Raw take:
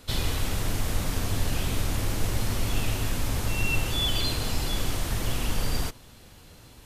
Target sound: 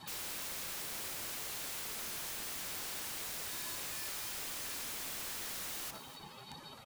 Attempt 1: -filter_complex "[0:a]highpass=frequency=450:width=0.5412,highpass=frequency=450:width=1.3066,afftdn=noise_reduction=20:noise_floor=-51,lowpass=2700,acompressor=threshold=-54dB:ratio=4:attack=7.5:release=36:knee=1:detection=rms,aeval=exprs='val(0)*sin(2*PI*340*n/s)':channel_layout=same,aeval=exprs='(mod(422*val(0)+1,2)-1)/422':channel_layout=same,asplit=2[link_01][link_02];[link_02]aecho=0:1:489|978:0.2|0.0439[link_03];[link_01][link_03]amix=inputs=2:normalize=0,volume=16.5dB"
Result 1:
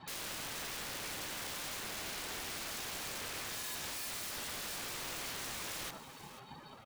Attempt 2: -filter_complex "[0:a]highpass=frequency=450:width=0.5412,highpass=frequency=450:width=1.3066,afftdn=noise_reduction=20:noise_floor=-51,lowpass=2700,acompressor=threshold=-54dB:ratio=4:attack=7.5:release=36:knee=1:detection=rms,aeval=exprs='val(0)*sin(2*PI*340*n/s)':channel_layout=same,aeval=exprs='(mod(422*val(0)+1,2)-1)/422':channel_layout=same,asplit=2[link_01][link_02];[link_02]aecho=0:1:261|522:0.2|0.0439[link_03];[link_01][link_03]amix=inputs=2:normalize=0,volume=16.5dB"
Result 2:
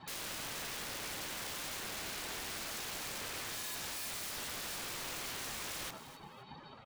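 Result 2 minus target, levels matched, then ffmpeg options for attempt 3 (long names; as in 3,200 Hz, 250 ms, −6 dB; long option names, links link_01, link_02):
2,000 Hz band +3.5 dB
-filter_complex "[0:a]highpass=frequency=450:width=0.5412,highpass=frequency=450:width=1.3066,afftdn=noise_reduction=20:noise_floor=-51,acompressor=threshold=-54dB:ratio=4:attack=7.5:release=36:knee=1:detection=rms,aeval=exprs='val(0)*sin(2*PI*340*n/s)':channel_layout=same,aeval=exprs='(mod(422*val(0)+1,2)-1)/422':channel_layout=same,asplit=2[link_01][link_02];[link_02]aecho=0:1:261|522:0.2|0.0439[link_03];[link_01][link_03]amix=inputs=2:normalize=0,volume=16.5dB"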